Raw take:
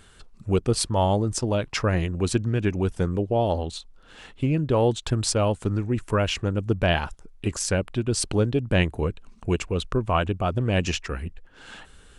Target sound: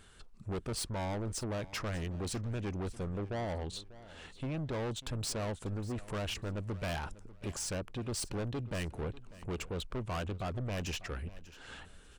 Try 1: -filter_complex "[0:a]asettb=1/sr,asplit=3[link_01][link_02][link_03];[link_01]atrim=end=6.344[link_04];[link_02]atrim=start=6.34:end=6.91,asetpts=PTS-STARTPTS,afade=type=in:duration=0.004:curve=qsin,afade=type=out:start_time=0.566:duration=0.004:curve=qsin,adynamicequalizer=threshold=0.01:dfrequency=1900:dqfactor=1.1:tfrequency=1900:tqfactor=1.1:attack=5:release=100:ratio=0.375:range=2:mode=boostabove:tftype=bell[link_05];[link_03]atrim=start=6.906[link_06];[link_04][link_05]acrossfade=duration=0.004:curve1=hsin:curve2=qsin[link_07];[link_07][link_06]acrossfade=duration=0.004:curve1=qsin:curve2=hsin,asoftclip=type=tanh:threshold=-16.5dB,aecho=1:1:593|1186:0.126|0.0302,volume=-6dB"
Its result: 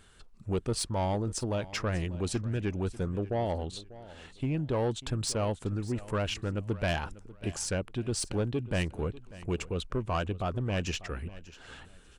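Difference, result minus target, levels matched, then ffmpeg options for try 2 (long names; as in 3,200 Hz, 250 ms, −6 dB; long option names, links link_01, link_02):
soft clipping: distortion −10 dB
-filter_complex "[0:a]asettb=1/sr,asplit=3[link_01][link_02][link_03];[link_01]atrim=end=6.344[link_04];[link_02]atrim=start=6.34:end=6.91,asetpts=PTS-STARTPTS,afade=type=in:duration=0.004:curve=qsin,afade=type=out:start_time=0.566:duration=0.004:curve=qsin,adynamicequalizer=threshold=0.01:dfrequency=1900:dqfactor=1.1:tfrequency=1900:tqfactor=1.1:attack=5:release=100:ratio=0.375:range=2:mode=boostabove:tftype=bell[link_05];[link_03]atrim=start=6.906[link_06];[link_04][link_05]acrossfade=duration=0.004:curve1=hsin:curve2=qsin[link_07];[link_07][link_06]acrossfade=duration=0.004:curve1=qsin:curve2=hsin,asoftclip=type=tanh:threshold=-27.5dB,aecho=1:1:593|1186:0.126|0.0302,volume=-6dB"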